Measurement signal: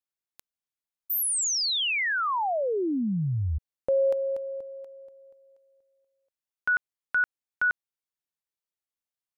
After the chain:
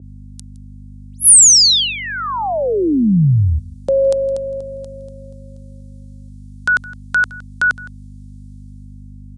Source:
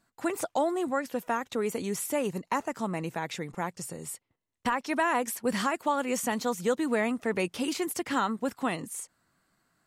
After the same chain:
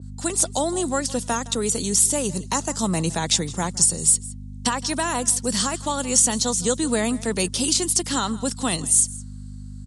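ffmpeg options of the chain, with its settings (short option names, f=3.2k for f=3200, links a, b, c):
-filter_complex "[0:a]acrossover=split=420[a][b];[b]aexciter=amount=10.2:drive=1.4:freq=3.3k[c];[a][c]amix=inputs=2:normalize=0,equalizer=f=140:t=o:w=1.8:g=6,dynaudnorm=f=110:g=13:m=10dB,aeval=exprs='val(0)+0.0251*(sin(2*PI*50*n/s)+sin(2*PI*2*50*n/s)/2+sin(2*PI*3*50*n/s)/3+sin(2*PI*4*50*n/s)/4+sin(2*PI*5*50*n/s)/5)':c=same,highpass=f=55:w=0.5412,highpass=f=55:w=1.3066,asplit=2[d][e];[e]aecho=0:1:164:0.1[f];[d][f]amix=inputs=2:normalize=0,aresample=22050,aresample=44100,adynamicequalizer=threshold=0.0224:dfrequency=2200:dqfactor=0.7:tfrequency=2200:tqfactor=0.7:attack=5:release=100:ratio=0.375:range=1.5:mode=cutabove:tftype=highshelf"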